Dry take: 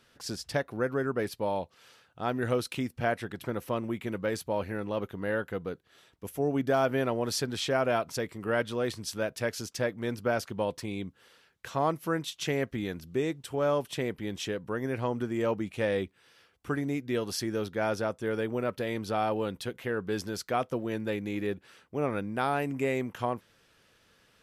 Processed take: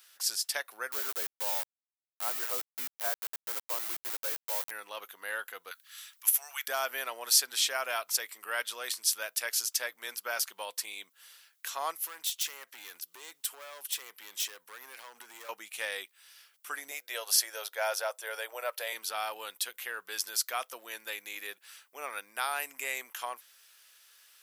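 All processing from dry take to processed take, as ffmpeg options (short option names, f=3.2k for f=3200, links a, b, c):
-filter_complex "[0:a]asettb=1/sr,asplit=3[a][b][c];[a]atrim=end=0.924[d];[b]atrim=start=0.92:end=4.71,asetpts=PTS-STARTPTS,afade=t=in:d=0.004:c=qsin,afade=t=out:st=3.786:d=0.004:c=qsin,lowpass=1.1k,lowshelf=f=150:t=q:w=1.5:g=-11.5,aeval=exprs='val(0)*gte(abs(val(0)),0.0168)':c=same[e];[c]atrim=start=4.706[f];[d][e]acrossfade=d=0.004:c1=hsin:c2=qsin[g];[g][f]acrossfade=d=0.004:c1=qsin:c2=hsin,asettb=1/sr,asplit=3[h][i][j];[h]atrim=end=5.714[k];[i]atrim=start=5.71:end=6.68,asetpts=PTS-STARTPTS,afade=t=in:d=0.004:c=qsin,afade=t=out:st=0.966:d=0.004:c=qsin,highpass=f=1.1k:w=0.5412,highpass=f=1.1k:w=1.3066,acontrast=86[l];[j]atrim=start=6.676[m];[k][l]acrossfade=d=0.004:c1=hsin:c2=qsin[n];[n][m]acrossfade=d=0.004:c1=qsin:c2=hsin,asettb=1/sr,asplit=3[o][p][q];[o]atrim=end=12.054[r];[p]atrim=start=12.05:end=15.49,asetpts=PTS-STARTPTS,afade=t=in:d=0.004:c=qsin,afade=t=out:st=3.436:d=0.004:c=qsin,highpass=f=110:w=0.5412,highpass=f=110:w=1.3066,acompressor=threshold=-33dB:ratio=4:attack=3.2:release=140:knee=1:detection=peak,asoftclip=type=hard:threshold=-34dB[s];[q]atrim=start=15.486[t];[r][s]acrossfade=d=0.004:c1=hsin:c2=qsin[u];[u][t]acrossfade=d=0.004:c1=qsin:c2=hsin,asettb=1/sr,asplit=3[v][w][x];[v]atrim=end=16.914[y];[w]atrim=start=16.91:end=18.93,asetpts=PTS-STARTPTS,afade=t=in:d=0.004:c=qsin,afade=t=out:st=2.016:d=0.004:c=qsin,highpass=f=580:t=q:w=2.8,bandreject=f=1.2k:w=24[z];[x]atrim=start=18.926[aa];[y][z]acrossfade=d=0.004:c1=hsin:c2=qsin[ab];[ab][aa]acrossfade=d=0.004:c1=qsin:c2=hsin,highpass=950,aemphasis=mode=production:type=riaa,volume=-1dB"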